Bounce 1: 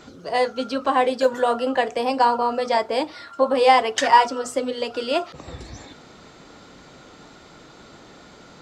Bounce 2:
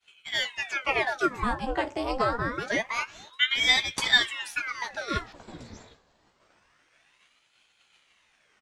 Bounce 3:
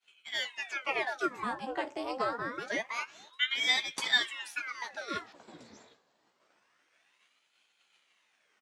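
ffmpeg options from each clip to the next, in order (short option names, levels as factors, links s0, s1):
-filter_complex "[0:a]asplit=2[s0][s1];[s1]adelay=15,volume=0.447[s2];[s0][s2]amix=inputs=2:normalize=0,agate=range=0.0224:threshold=0.0158:ratio=3:detection=peak,aeval=exprs='val(0)*sin(2*PI*1500*n/s+1500*0.9/0.26*sin(2*PI*0.26*n/s))':c=same,volume=0.562"
-af "highpass=220,volume=0.501"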